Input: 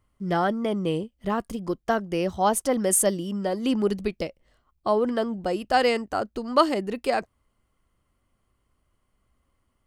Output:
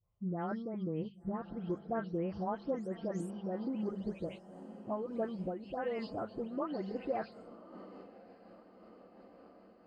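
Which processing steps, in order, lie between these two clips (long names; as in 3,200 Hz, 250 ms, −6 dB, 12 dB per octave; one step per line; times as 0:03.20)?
every frequency bin delayed by itself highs late, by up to 280 ms
high-pass filter 62 Hz 12 dB per octave
low-shelf EQ 330 Hz +8.5 dB
mains-hum notches 50/100/150/200 Hz
downward compressor 3 to 1, threshold −23 dBFS, peak gain reduction 8.5 dB
phaser swept by the level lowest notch 270 Hz, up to 4,800 Hz, full sweep at −21 dBFS
high-frequency loss of the air 190 metres
feedback delay with all-pass diffusion 1,131 ms, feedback 53%, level −15 dB
amplitude modulation by smooth noise, depth 65%
level −7 dB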